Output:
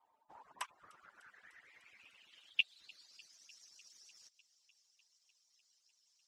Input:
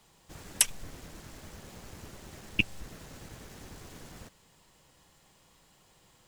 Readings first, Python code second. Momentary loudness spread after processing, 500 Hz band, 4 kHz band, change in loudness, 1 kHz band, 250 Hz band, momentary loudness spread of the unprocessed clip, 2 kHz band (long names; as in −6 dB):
23 LU, below −15 dB, −5.5 dB, −10.0 dB, −3.0 dB, below −30 dB, 21 LU, −6.5 dB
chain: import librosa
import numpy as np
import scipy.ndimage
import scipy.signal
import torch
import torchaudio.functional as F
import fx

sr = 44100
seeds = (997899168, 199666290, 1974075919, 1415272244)

y = fx.hpss_only(x, sr, part='percussive')
y = fx.filter_sweep_bandpass(y, sr, from_hz=870.0, to_hz=5500.0, start_s=0.29, end_s=3.36, q=6.3)
y = fx.echo_wet_highpass(y, sr, ms=300, feedback_pct=75, hz=3000.0, wet_db=-22.0)
y = F.gain(torch.from_numpy(y), 6.0).numpy()